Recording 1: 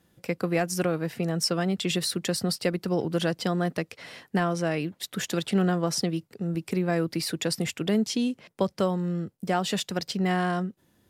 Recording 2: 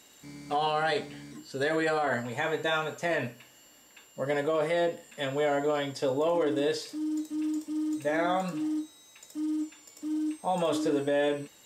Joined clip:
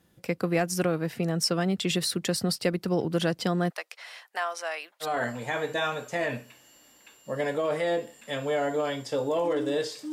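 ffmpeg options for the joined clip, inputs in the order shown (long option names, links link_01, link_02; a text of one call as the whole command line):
ffmpeg -i cue0.wav -i cue1.wav -filter_complex "[0:a]asplit=3[link_01][link_02][link_03];[link_01]afade=type=out:start_time=3.69:duration=0.02[link_04];[link_02]highpass=frequency=690:width=0.5412,highpass=frequency=690:width=1.3066,afade=type=in:start_time=3.69:duration=0.02,afade=type=out:start_time=5.1:duration=0.02[link_05];[link_03]afade=type=in:start_time=5.1:duration=0.02[link_06];[link_04][link_05][link_06]amix=inputs=3:normalize=0,apad=whole_dur=10.12,atrim=end=10.12,atrim=end=5.1,asetpts=PTS-STARTPTS[link_07];[1:a]atrim=start=1.9:end=7.02,asetpts=PTS-STARTPTS[link_08];[link_07][link_08]acrossfade=duration=0.1:curve1=tri:curve2=tri" out.wav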